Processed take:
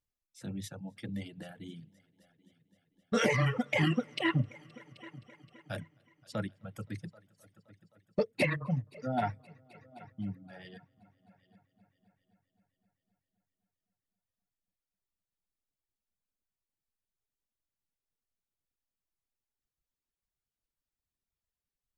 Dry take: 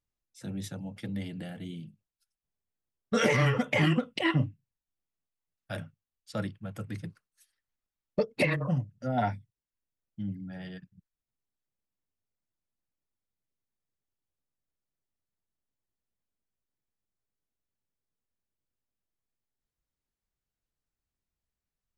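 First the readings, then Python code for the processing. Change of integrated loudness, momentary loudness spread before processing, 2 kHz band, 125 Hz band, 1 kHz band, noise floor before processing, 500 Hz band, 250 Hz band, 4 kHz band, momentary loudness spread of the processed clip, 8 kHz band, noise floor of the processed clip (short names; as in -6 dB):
-3.0 dB, 18 LU, -3.0 dB, -3.5 dB, -3.0 dB, under -85 dBFS, -3.0 dB, -3.0 dB, -3.0 dB, 22 LU, -2.5 dB, under -85 dBFS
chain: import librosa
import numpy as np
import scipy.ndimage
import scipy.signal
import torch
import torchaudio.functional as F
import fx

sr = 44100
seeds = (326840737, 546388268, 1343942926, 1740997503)

y = fx.echo_heads(x, sr, ms=261, heads='all three', feedback_pct=48, wet_db=-21.5)
y = fx.dereverb_blind(y, sr, rt60_s=1.7)
y = F.gain(torch.from_numpy(y), -2.0).numpy()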